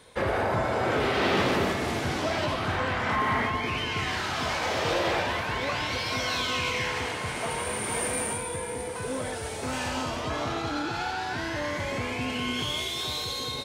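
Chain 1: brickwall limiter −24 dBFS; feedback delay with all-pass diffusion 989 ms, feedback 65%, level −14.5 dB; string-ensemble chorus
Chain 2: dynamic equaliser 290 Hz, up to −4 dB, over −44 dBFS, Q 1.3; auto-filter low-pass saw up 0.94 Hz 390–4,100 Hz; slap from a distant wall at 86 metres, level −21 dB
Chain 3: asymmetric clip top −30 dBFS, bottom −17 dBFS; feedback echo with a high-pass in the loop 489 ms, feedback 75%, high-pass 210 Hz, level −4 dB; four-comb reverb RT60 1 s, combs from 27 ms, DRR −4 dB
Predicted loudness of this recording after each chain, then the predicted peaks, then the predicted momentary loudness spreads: −35.0, −27.5, −22.0 LKFS; −23.0, −12.0, −8.0 dBFS; 2, 8, 3 LU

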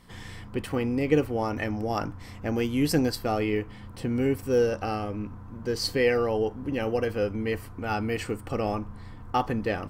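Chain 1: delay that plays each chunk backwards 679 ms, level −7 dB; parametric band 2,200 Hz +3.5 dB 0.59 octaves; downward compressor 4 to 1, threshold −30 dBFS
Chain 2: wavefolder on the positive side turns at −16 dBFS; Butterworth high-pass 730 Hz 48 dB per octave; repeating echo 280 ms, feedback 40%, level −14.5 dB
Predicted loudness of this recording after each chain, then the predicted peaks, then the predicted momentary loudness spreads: −34.0, −35.5 LKFS; −19.0, −15.5 dBFS; 4, 14 LU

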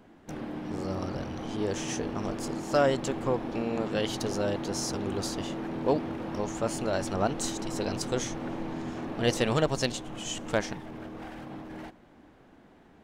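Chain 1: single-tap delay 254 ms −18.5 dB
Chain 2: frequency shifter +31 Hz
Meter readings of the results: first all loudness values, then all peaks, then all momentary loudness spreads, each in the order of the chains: −31.0, −31.0 LKFS; −14.0, −10.5 dBFS; 14, 14 LU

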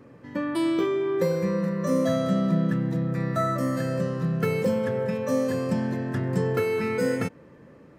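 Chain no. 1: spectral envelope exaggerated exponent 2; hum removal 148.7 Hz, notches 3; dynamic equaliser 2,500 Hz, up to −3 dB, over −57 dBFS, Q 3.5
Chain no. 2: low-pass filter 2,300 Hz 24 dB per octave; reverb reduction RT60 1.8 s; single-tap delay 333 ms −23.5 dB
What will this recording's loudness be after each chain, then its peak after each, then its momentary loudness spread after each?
−26.0, −29.5 LKFS; −12.0, −14.0 dBFS; 4, 6 LU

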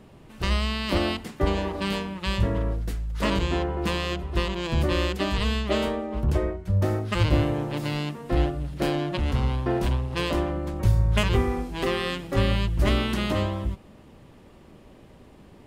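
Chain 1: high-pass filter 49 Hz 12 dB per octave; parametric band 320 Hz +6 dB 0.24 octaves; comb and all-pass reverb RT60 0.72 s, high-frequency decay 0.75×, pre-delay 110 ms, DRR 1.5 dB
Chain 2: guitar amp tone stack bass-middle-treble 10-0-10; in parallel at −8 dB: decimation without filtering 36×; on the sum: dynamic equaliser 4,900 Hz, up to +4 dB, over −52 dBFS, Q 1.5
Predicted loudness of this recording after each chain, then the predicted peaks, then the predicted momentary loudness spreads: −24.0, −32.5 LKFS; −7.0, −10.0 dBFS; 5, 7 LU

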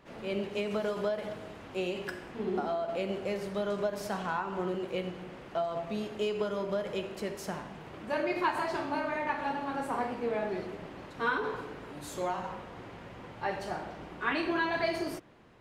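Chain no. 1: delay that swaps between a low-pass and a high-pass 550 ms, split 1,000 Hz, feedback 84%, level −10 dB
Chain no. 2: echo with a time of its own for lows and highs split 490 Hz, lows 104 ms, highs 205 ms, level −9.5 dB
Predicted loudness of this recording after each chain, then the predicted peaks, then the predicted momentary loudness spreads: −34.0, −33.5 LKFS; −16.5, −16.0 dBFS; 9, 11 LU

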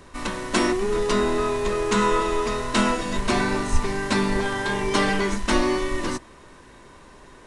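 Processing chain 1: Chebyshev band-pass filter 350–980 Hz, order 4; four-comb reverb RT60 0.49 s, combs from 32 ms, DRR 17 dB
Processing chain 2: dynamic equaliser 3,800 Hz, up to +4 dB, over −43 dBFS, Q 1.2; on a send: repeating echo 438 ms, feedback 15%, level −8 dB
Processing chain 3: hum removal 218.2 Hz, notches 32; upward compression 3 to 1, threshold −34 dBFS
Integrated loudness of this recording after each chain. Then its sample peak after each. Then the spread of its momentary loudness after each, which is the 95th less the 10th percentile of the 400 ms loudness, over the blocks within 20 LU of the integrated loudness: −27.5, −22.0, −23.5 LKFS; −13.0, −6.0, −7.5 dBFS; 8, 8, 20 LU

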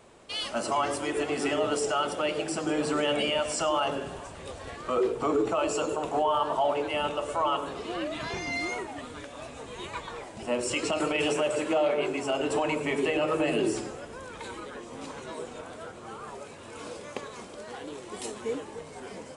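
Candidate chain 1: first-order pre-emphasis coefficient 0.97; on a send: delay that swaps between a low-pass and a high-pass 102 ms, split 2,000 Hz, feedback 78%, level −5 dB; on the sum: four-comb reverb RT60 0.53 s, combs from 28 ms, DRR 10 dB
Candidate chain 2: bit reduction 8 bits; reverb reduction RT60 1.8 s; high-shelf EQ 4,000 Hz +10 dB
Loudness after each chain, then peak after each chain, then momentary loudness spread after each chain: −40.0, −29.5 LKFS; −20.5, −13.5 dBFS; 14, 15 LU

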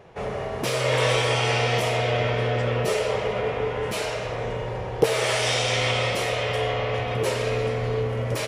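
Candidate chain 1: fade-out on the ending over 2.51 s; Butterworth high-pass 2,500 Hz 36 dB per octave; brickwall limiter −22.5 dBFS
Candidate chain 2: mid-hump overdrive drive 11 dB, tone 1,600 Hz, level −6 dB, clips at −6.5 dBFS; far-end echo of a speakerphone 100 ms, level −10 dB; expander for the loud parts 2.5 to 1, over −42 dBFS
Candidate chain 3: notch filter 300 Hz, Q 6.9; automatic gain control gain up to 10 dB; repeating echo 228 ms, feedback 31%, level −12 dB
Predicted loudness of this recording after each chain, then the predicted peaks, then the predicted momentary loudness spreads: −32.5, −32.5, −16.0 LKFS; −22.5, −8.0, −1.5 dBFS; 16, 18, 6 LU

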